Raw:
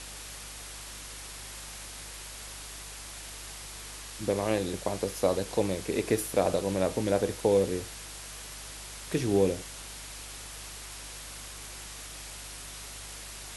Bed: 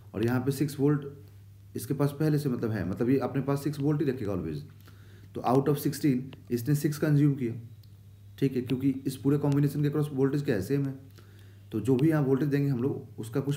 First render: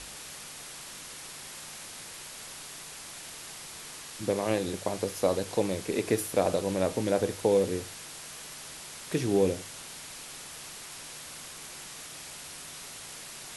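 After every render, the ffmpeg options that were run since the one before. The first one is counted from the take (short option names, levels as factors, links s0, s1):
-af "bandreject=f=50:t=h:w=4,bandreject=f=100:t=h:w=4"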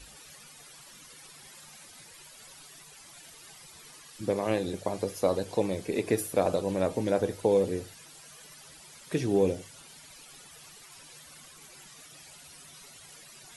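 -af "afftdn=nr=13:nf=-44"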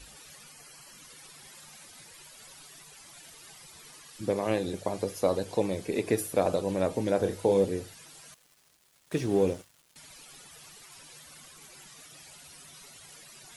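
-filter_complex "[0:a]asettb=1/sr,asplit=3[s0][s1][s2];[s0]atrim=end=0.524[s3];[s1]atrim=start=0.52:end=0.98,asetpts=PTS-STARTPTS,afade=t=in:d=0.004:c=qsin,afade=t=out:st=0.456:d=0.004:c=qsin,asuperstop=centerf=3600:order=12:qfactor=6.8[s4];[s2]atrim=start=0.976[s5];[s3][s4]acrossfade=d=0.004:c1=hsin:c2=qsin[s6];[s6][s5]acrossfade=d=0.004:c1=qsin:c2=hsin,asettb=1/sr,asplit=3[s7][s8][s9];[s7]atrim=end=7.174[s10];[s8]atrim=start=7.17:end=7.65,asetpts=PTS-STARTPTS,afade=t=in:d=0.004:c=qsin,afade=t=out:st=0.476:d=0.004:c=qsin,asplit=2[s11][s12];[s12]adelay=31,volume=0.447[s13];[s11][s13]amix=inputs=2:normalize=0,atrim=end_sample=21168[s14];[s9]atrim=start=7.646[s15];[s10][s14]acrossfade=d=0.004:c1=hsin:c2=qsin[s16];[s16][s15]acrossfade=d=0.004:c1=qsin:c2=hsin,asettb=1/sr,asplit=3[s17][s18][s19];[s17]atrim=end=8.344[s20];[s18]atrim=start=8.34:end=9.96,asetpts=PTS-STARTPTS,afade=t=in:d=0.004:c=qsin,afade=t=out:st=1.616:d=0.004:c=qsin,aeval=exprs='sgn(val(0))*max(abs(val(0))-0.00447,0)':c=same[s21];[s19]atrim=start=9.956[s22];[s20][s21]acrossfade=d=0.004:c1=hsin:c2=qsin[s23];[s23][s22]acrossfade=d=0.004:c1=qsin:c2=hsin"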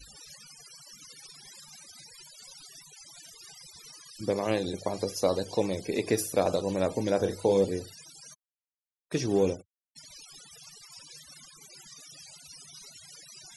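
-af "afftfilt=real='re*gte(hypot(re,im),0.00447)':imag='im*gte(hypot(re,im),0.00447)':win_size=1024:overlap=0.75,equalizer=f=5400:t=o:w=0.82:g=11"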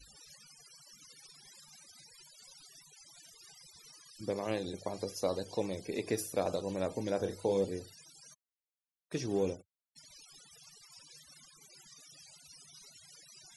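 -af "volume=0.447"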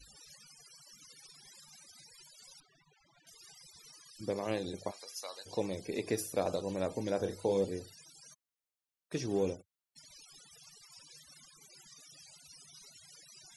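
-filter_complex "[0:a]asettb=1/sr,asplit=3[s0][s1][s2];[s0]atrim=end=2.604[s3];[s1]atrim=start=2.6:end=3.27,asetpts=PTS-STARTPTS,afade=t=in:d=0.004:c=qsin,afade=t=out:st=0.666:d=0.004:c=qsin,lowpass=2000[s4];[s2]atrim=start=3.266[s5];[s3][s4]acrossfade=d=0.004:c1=hsin:c2=qsin[s6];[s6][s5]acrossfade=d=0.004:c1=qsin:c2=hsin,asplit=3[s7][s8][s9];[s7]afade=t=out:st=4.9:d=0.02[s10];[s8]highpass=1300,afade=t=in:st=4.9:d=0.02,afade=t=out:st=5.45:d=0.02[s11];[s9]afade=t=in:st=5.45:d=0.02[s12];[s10][s11][s12]amix=inputs=3:normalize=0"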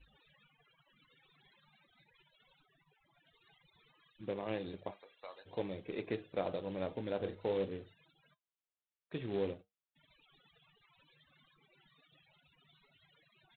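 -af "aresample=8000,acrusher=bits=4:mode=log:mix=0:aa=0.000001,aresample=44100,flanger=delay=5.2:depth=3.1:regen=-74:speed=0.48:shape=triangular"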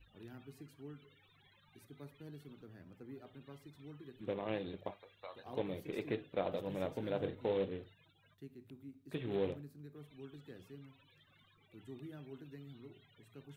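-filter_complex "[1:a]volume=0.0531[s0];[0:a][s0]amix=inputs=2:normalize=0"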